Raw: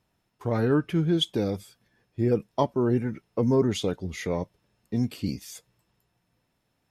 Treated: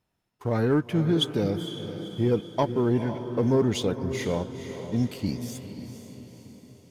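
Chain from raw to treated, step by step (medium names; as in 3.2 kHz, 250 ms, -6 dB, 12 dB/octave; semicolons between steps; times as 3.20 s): waveshaping leveller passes 1; echo that smears into a reverb 487 ms, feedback 52%, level -10 dB; trim -3 dB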